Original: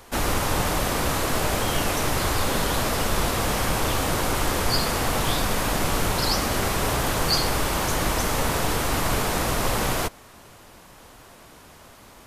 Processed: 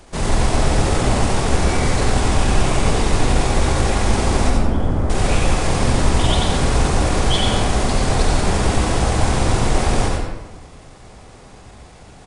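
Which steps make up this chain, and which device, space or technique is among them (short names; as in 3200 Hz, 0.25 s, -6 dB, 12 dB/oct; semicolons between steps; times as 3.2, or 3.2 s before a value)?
4.48–5.1 EQ curve 360 Hz 0 dB, 2200 Hz -8 dB, 4400 Hz -21 dB; monster voice (pitch shift -6 st; low shelf 180 Hz +7 dB; echo 91 ms -8.5 dB; reverb RT60 1.0 s, pre-delay 71 ms, DRR -1 dB)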